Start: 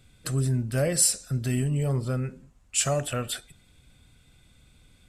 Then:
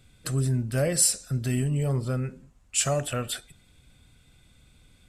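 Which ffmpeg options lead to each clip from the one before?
-af anull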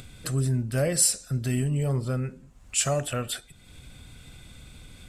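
-af "acompressor=mode=upward:threshold=-35dB:ratio=2.5"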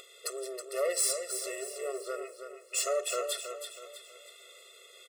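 -af "aeval=exprs='(tanh(17.8*val(0)+0.25)-tanh(0.25))/17.8':c=same,aecho=1:1:322|644|966|1288|1610:0.398|0.163|0.0669|0.0274|0.0112,afftfilt=real='re*eq(mod(floor(b*sr/1024/360),2),1)':imag='im*eq(mod(floor(b*sr/1024/360),2),1)':win_size=1024:overlap=0.75,volume=2.5dB"

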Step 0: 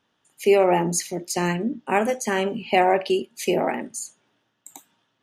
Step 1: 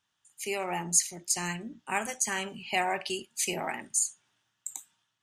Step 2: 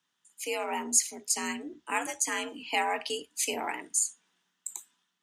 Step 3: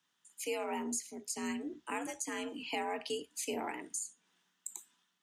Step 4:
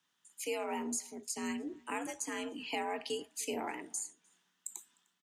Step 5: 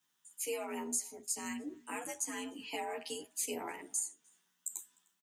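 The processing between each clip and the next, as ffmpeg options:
-af "equalizer=f=250:t=o:w=1:g=-9,equalizer=f=500:t=o:w=1:g=-12,equalizer=f=8k:t=o:w=1:g=11,dynaudnorm=f=220:g=5:m=4dB,volume=-7.5dB"
-af "afreqshift=66"
-filter_complex "[0:a]acrossover=split=490[a][b];[b]acompressor=threshold=-41dB:ratio=3[c];[a][c]amix=inputs=2:normalize=0"
-filter_complex "[0:a]asplit=2[a][b];[b]adelay=303.2,volume=-26dB,highshelf=f=4k:g=-6.82[c];[a][c]amix=inputs=2:normalize=0"
-filter_complex "[0:a]acrossover=split=4800[a][b];[b]crystalizer=i=1.5:c=0[c];[a][c]amix=inputs=2:normalize=0,asplit=2[d][e];[e]adelay=11.2,afreqshift=0.74[f];[d][f]amix=inputs=2:normalize=1"

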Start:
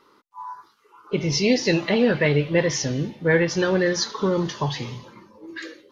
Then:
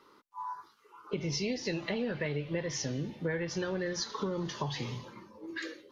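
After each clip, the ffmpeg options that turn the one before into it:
-filter_complex "[0:a]acrossover=split=100[a][b];[a]alimiter=level_in=19.5dB:limit=-24dB:level=0:latency=1,volume=-19.5dB[c];[b]acompressor=threshold=-28dB:ratio=6[d];[c][d]amix=inputs=2:normalize=0,volume=-3.5dB"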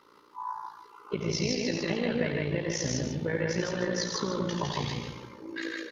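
-filter_complex "[0:a]asplit=2[a][b];[b]aecho=0:1:87.46|157.4:0.447|0.794[c];[a][c]amix=inputs=2:normalize=0,tremolo=f=57:d=0.71,asplit=2[d][e];[e]aecho=0:1:145:0.335[f];[d][f]amix=inputs=2:normalize=0,volume=4.5dB"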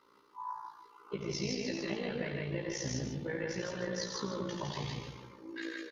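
-filter_complex "[0:a]asplit=2[a][b];[b]adelay=15,volume=-4.5dB[c];[a][c]amix=inputs=2:normalize=0,volume=-8dB"

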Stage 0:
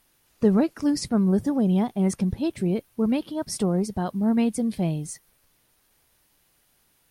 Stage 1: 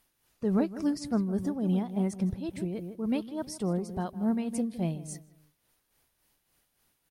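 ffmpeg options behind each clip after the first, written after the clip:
-filter_complex "[0:a]asplit=2[a][b];[b]adelay=159,lowpass=f=1.5k:p=1,volume=-10.5dB,asplit=2[c][d];[d]adelay=159,lowpass=f=1.5k:p=1,volume=0.32,asplit=2[e][f];[f]adelay=159,lowpass=f=1.5k:p=1,volume=0.32[g];[a][c][e][g]amix=inputs=4:normalize=0,tremolo=f=3.5:d=0.54,volume=-5dB"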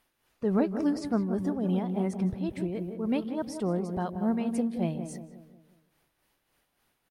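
-filter_complex "[0:a]bass=f=250:g=-5,treble=f=4k:g=-8,asplit=2[a][b];[b]adelay=181,lowpass=f=1.2k:p=1,volume=-8.5dB,asplit=2[c][d];[d]adelay=181,lowpass=f=1.2k:p=1,volume=0.48,asplit=2[e][f];[f]adelay=181,lowpass=f=1.2k:p=1,volume=0.48,asplit=2[g][h];[h]adelay=181,lowpass=f=1.2k:p=1,volume=0.48,asplit=2[i][j];[j]adelay=181,lowpass=f=1.2k:p=1,volume=0.48[k];[c][e][g][i][k]amix=inputs=5:normalize=0[l];[a][l]amix=inputs=2:normalize=0,volume=3dB"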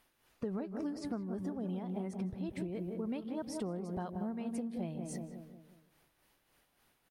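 -af "acompressor=threshold=-36dB:ratio=10,volume=1dB"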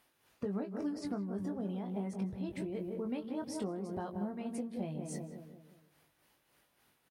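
-filter_complex "[0:a]highpass=66,asplit=2[a][b];[b]adelay=20,volume=-6.5dB[c];[a][c]amix=inputs=2:normalize=0"

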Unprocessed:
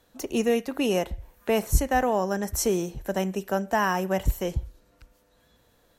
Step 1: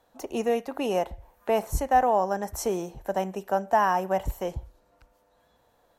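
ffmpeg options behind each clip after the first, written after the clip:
-af "equalizer=f=800:w=1:g=12,volume=-7dB"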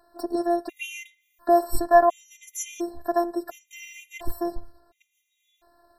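-af "afftfilt=real='hypot(re,im)*cos(PI*b)':imag='0':win_size=512:overlap=0.75,afftfilt=real='re*gt(sin(2*PI*0.71*pts/sr)*(1-2*mod(floor(b*sr/1024/1900),2)),0)':imag='im*gt(sin(2*PI*0.71*pts/sr)*(1-2*mod(floor(b*sr/1024/1900),2)),0)':win_size=1024:overlap=0.75,volume=9dB"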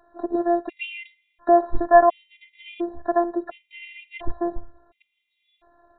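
-af "aresample=8000,aresample=44100,volume=2.5dB"

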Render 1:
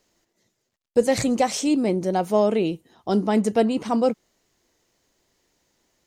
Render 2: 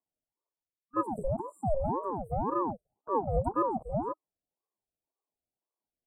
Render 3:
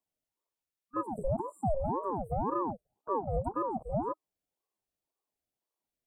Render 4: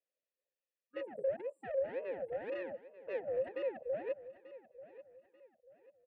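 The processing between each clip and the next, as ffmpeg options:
-af "afftfilt=real='re*(1-between(b*sr/4096,480,7900))':imag='im*(1-between(b*sr/4096,480,7900))':win_size=4096:overlap=0.75,afwtdn=0.0501,aeval=exprs='val(0)*sin(2*PI*530*n/s+530*0.5/1.9*sin(2*PI*1.9*n/s))':c=same,volume=-5dB"
-af "alimiter=limit=-23dB:level=0:latency=1:release=423,volume=1.5dB"
-filter_complex "[0:a]asoftclip=type=tanh:threshold=-31.5dB,asplit=3[a][b][c];[a]bandpass=f=530:t=q:w=8,volume=0dB[d];[b]bandpass=f=1.84k:t=q:w=8,volume=-6dB[e];[c]bandpass=f=2.48k:t=q:w=8,volume=-9dB[f];[d][e][f]amix=inputs=3:normalize=0,aecho=1:1:888|1776|2664:0.158|0.0555|0.0194,volume=8dB"

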